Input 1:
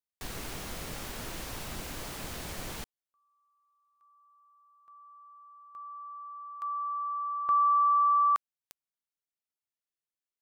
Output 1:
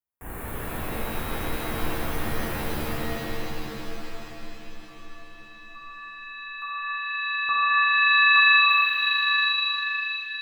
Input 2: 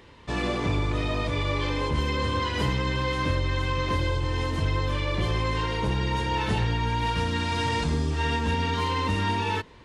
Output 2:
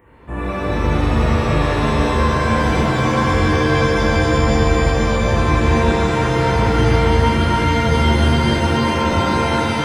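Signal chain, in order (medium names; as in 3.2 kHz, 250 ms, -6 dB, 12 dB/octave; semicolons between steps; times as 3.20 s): Butterworth band-stop 4.7 kHz, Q 0.54; pitch-shifted reverb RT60 3.9 s, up +7 st, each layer -2 dB, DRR -8.5 dB; trim -1 dB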